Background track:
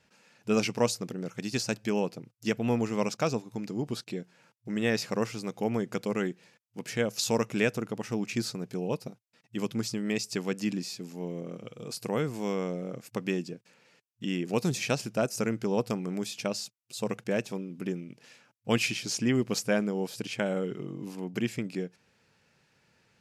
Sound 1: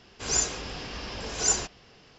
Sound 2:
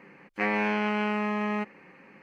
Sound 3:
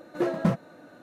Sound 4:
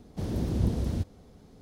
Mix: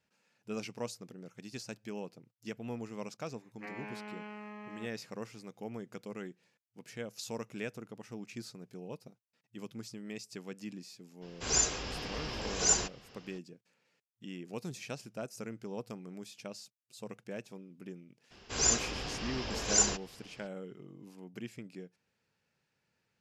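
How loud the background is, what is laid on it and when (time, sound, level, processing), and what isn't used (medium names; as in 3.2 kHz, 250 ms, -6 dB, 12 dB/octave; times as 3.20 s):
background track -13 dB
3.23 s: add 2 -18 dB
11.21 s: add 1 -2.5 dB, fades 0.02 s
18.30 s: add 1 -2 dB, fades 0.02 s
not used: 3, 4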